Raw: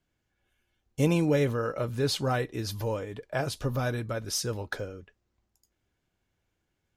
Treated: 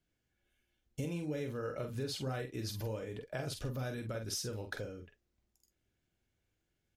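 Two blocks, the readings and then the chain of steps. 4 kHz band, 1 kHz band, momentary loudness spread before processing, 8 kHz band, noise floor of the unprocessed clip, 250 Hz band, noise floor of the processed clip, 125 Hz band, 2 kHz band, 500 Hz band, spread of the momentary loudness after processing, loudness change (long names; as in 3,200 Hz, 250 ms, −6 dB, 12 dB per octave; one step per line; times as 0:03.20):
−8.5 dB, −12.5 dB, 11 LU, −8.0 dB, −80 dBFS, −11.0 dB, −83 dBFS, −9.5 dB, −10.0 dB, −10.5 dB, 5 LU, −10.0 dB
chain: parametric band 1,000 Hz −6.5 dB 0.92 octaves
downward compressor 6 to 1, threshold −32 dBFS, peak gain reduction 12.5 dB
double-tracking delay 46 ms −6.5 dB
level −4 dB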